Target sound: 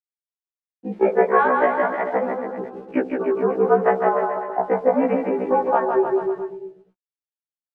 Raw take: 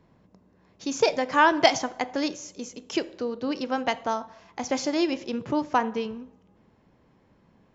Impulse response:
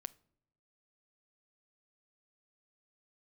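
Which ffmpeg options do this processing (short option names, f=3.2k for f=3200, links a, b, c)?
-filter_complex "[0:a]afftfilt=real='re*gte(hypot(re,im),0.0224)':imag='im*gte(hypot(re,im),0.0224)':win_size=1024:overlap=0.75,afwtdn=0.0158,highpass=f=410:t=q:w=0.5412,highpass=f=410:t=q:w=1.307,lowpass=f=2.1k:t=q:w=0.5176,lowpass=f=2.1k:t=q:w=0.7071,lowpass=f=2.1k:t=q:w=1.932,afreqshift=-70,asplit=2[a][b];[b]acontrast=64,volume=0dB[c];[a][c]amix=inputs=2:normalize=0,alimiter=limit=-9dB:level=0:latency=1:release=353,acompressor=threshold=-23dB:ratio=2.5,aeval=exprs='val(0)*gte(abs(val(0)),0.00237)':c=same,aemphasis=mode=reproduction:type=75fm,aecho=1:1:160|304|433.6|550.2|655.2:0.631|0.398|0.251|0.158|0.1,afftfilt=real='re*1.73*eq(mod(b,3),0)':imag='im*1.73*eq(mod(b,3),0)':win_size=2048:overlap=0.75,volume=7dB"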